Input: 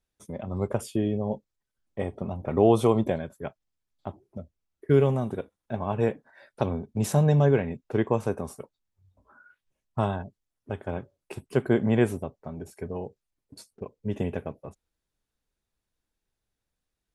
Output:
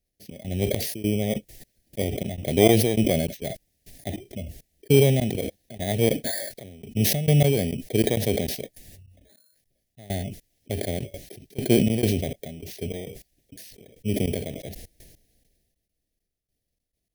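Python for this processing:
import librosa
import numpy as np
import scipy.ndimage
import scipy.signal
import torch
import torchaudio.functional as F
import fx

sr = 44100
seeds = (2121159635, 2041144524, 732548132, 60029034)

y = fx.bit_reversed(x, sr, seeds[0], block=16)
y = scipy.signal.sosfilt(scipy.signal.cheby1(3, 1.0, [710.0, 1800.0], 'bandstop', fs=sr, output='sos'), y)
y = fx.cheby_harmonics(y, sr, harmonics=(4,), levels_db=(-28,), full_scale_db=-5.0)
y = fx.step_gate(y, sr, bpm=101, pattern='xx.xx..xx.x..', floor_db=-24.0, edge_ms=4.5)
y = fx.sustainer(y, sr, db_per_s=38.0)
y = F.gain(torch.from_numpy(y), 3.5).numpy()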